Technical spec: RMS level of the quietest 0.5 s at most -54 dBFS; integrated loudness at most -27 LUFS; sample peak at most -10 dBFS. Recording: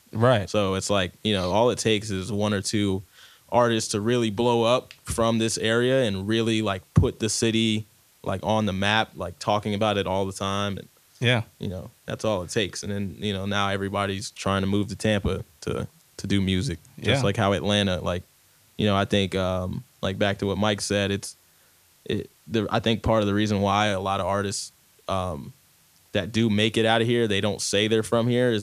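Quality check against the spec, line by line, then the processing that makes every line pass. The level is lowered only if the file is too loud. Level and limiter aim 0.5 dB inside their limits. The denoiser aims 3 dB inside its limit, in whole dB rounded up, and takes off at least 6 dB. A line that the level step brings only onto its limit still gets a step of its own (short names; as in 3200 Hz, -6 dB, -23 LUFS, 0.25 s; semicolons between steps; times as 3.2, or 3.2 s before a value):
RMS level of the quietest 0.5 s -59 dBFS: OK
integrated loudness -24.5 LUFS: fail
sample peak -5.5 dBFS: fail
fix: gain -3 dB; limiter -10.5 dBFS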